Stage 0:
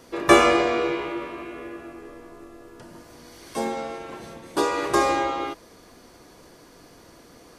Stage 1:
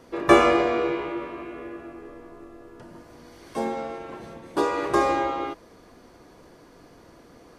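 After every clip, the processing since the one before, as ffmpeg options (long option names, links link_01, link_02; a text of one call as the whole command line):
ffmpeg -i in.wav -af "highshelf=frequency=3000:gain=-9.5" out.wav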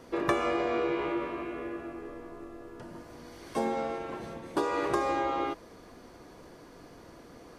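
ffmpeg -i in.wav -af "acompressor=threshold=-25dB:ratio=8" out.wav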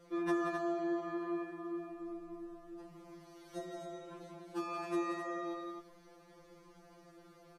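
ffmpeg -i in.wav -af "aecho=1:1:178|263:0.422|0.447,afftfilt=real='re*2.83*eq(mod(b,8),0)':imag='im*2.83*eq(mod(b,8),0)':win_size=2048:overlap=0.75,volume=-8dB" out.wav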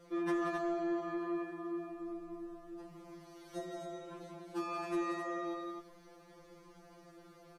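ffmpeg -i in.wav -af "asoftclip=type=tanh:threshold=-28.5dB,volume=1.5dB" out.wav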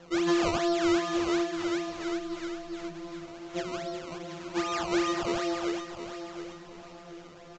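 ffmpeg -i in.wav -af "acrusher=samples=18:mix=1:aa=0.000001:lfo=1:lforange=18:lforate=2.5,aecho=1:1:721|1442|2163|2884:0.316|0.108|0.0366|0.0124,aresample=16000,aresample=44100,volume=8.5dB" out.wav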